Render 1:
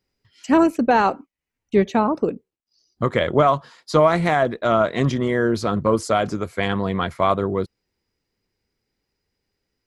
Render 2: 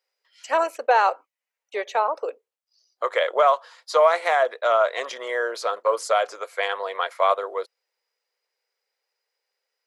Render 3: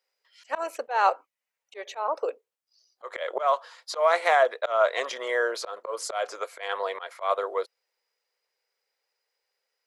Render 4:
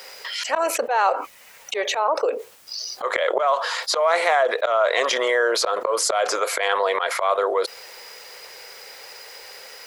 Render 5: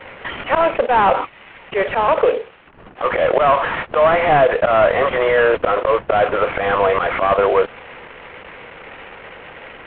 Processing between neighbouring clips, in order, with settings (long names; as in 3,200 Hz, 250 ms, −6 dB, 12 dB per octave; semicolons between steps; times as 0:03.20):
elliptic high-pass filter 500 Hz, stop band 70 dB
volume swells 188 ms
envelope flattener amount 70%
variable-slope delta modulation 16 kbit/s; level +8 dB